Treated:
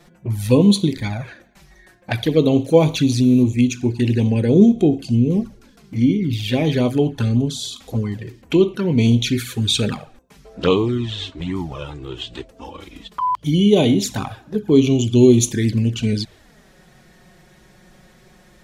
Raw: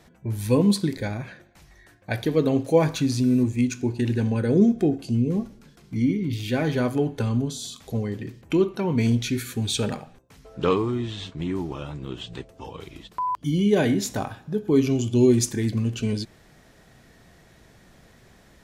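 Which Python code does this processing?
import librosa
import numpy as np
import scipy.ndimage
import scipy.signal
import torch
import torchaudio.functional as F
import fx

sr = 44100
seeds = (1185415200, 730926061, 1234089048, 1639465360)

y = fx.env_flanger(x, sr, rest_ms=6.0, full_db=-19.0)
y = fx.dynamic_eq(y, sr, hz=3400.0, q=1.6, threshold_db=-51.0, ratio=4.0, max_db=6)
y = y * librosa.db_to_amplitude(6.5)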